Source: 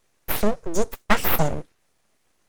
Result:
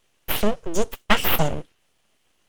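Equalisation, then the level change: peaking EQ 3 kHz +9.5 dB 0.42 oct; 0.0 dB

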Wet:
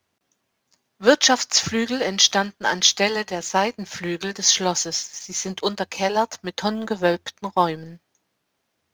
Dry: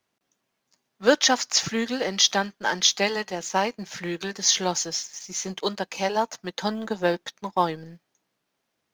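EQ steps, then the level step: peaking EQ 87 Hz +14 dB 0.28 oct; +3.5 dB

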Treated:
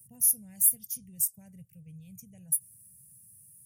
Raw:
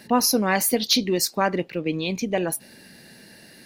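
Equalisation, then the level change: high-pass 84 Hz 24 dB/octave; elliptic band-stop 130–9200 Hz, stop band 40 dB; peaking EQ 180 Hz -9 dB 2.3 oct; +3.0 dB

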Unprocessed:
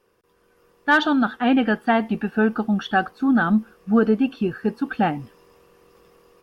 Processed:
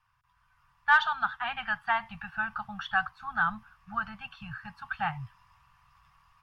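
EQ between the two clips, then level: elliptic band-stop 130–950 Hz, stop band 70 dB; low-pass 1.8 kHz 6 dB/octave; 0.0 dB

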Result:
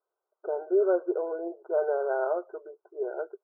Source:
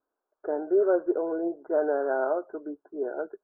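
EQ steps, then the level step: brick-wall FIR band-pass 340–1600 Hz; distance through air 350 m; 0.0 dB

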